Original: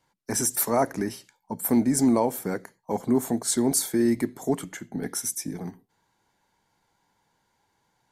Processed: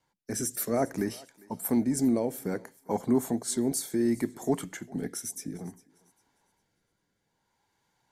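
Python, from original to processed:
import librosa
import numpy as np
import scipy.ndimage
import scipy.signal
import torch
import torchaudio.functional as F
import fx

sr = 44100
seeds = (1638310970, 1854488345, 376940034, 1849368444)

y = fx.rotary(x, sr, hz=0.6)
y = fx.echo_thinned(y, sr, ms=402, feedback_pct=30, hz=510.0, wet_db=-21.0)
y = y * 10.0 ** (-1.5 / 20.0)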